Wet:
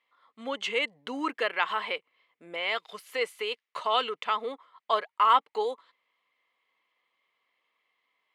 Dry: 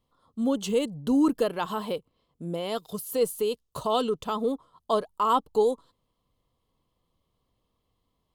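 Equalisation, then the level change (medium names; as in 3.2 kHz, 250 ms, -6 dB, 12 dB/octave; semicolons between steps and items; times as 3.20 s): Bessel high-pass 420 Hz, order 2; resonant low-pass 2.1 kHz, resonance Q 5.2; tilt EQ +4.5 dB/octave; 0.0 dB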